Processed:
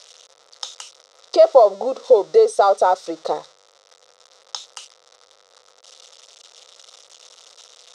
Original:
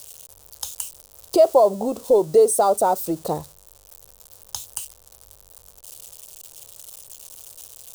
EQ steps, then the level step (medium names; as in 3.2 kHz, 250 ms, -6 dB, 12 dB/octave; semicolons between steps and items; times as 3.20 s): cabinet simulation 440–6100 Hz, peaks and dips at 500 Hz +7 dB, 710 Hz +3 dB, 1.3 kHz +10 dB, 2 kHz +9 dB, 3.7 kHz +8 dB, 5.5 kHz +5 dB; 0.0 dB